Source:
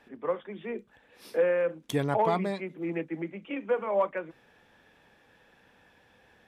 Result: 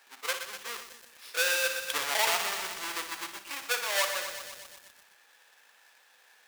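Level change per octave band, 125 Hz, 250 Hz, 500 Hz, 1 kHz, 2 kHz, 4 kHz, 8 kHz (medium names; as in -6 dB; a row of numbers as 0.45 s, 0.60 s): under -25 dB, -19.5 dB, -10.0 dB, -2.0 dB, +9.5 dB, +17.0 dB, no reading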